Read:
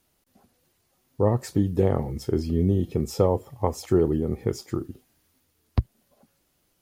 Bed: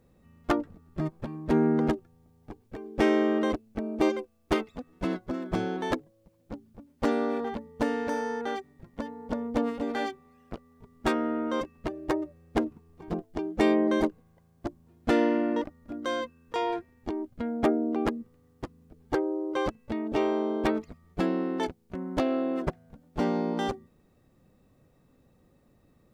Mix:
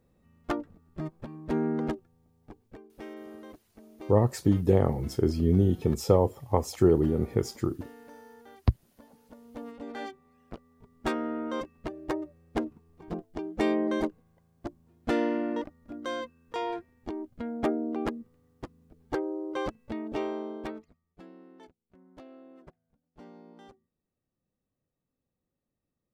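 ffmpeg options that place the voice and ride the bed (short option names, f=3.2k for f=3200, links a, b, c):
-filter_complex "[0:a]adelay=2900,volume=-0.5dB[a];[1:a]volume=11.5dB,afade=t=out:st=2.68:d=0.25:silence=0.177828,afade=t=in:st=9.43:d=1.01:silence=0.149624,afade=t=out:st=19.94:d=1.11:silence=0.105925[b];[a][b]amix=inputs=2:normalize=0"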